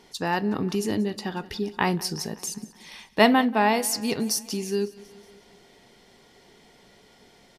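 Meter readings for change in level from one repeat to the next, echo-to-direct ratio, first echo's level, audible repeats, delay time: −4.5 dB, −18.0 dB, −20.0 dB, 4, 184 ms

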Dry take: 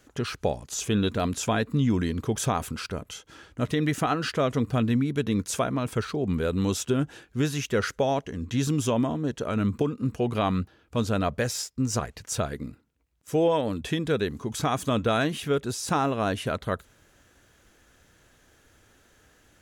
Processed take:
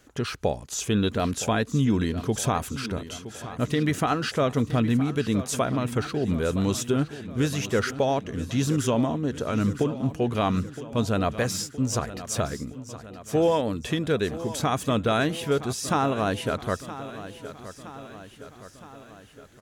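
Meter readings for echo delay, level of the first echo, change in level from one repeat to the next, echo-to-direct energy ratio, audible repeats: 967 ms, −14.0 dB, −4.5 dB, −12.5 dB, 4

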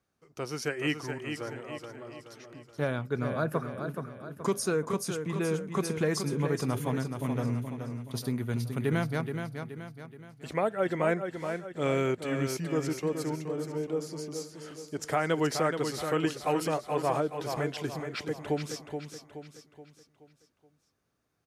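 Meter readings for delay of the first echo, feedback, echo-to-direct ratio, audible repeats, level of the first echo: 425 ms, 45%, −6.0 dB, 5, −7.0 dB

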